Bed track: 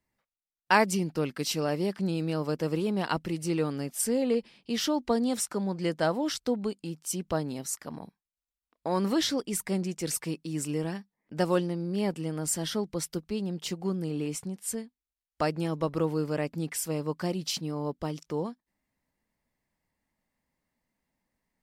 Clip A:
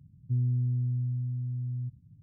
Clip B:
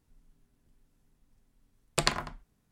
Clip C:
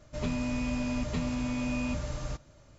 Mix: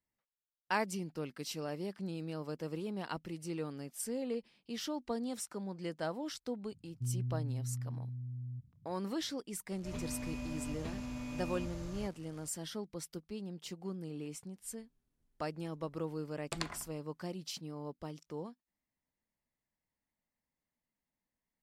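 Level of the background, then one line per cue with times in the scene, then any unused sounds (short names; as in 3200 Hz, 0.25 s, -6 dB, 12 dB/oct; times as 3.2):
bed track -11 dB
6.71 add A -9 dB
9.71 add C -10 dB + delta modulation 64 kbps, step -45.5 dBFS
14.54 add B -12.5 dB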